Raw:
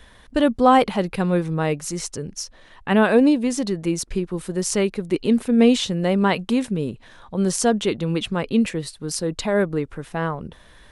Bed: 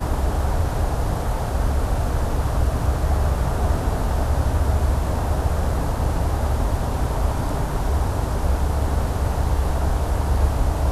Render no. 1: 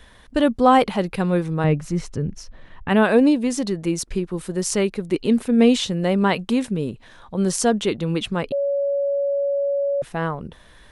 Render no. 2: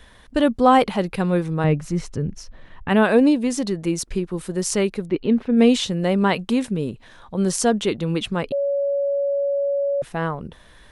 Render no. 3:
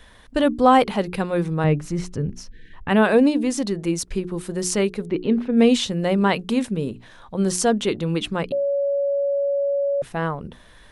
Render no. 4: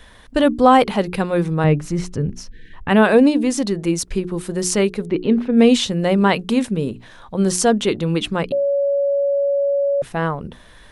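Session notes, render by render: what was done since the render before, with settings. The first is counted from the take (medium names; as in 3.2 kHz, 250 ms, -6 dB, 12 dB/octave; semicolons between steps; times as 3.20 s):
1.64–2.89 s: tone controls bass +10 dB, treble -13 dB; 8.52–10.02 s: bleep 562 Hz -18.5 dBFS
5.06–5.57 s: distance through air 260 m
hum notches 60/120/180/240/300/360/420 Hz; 2.49–2.73 s: spectral selection erased 510–1500 Hz
trim +3.5 dB; peak limiter -2 dBFS, peak gain reduction 1.5 dB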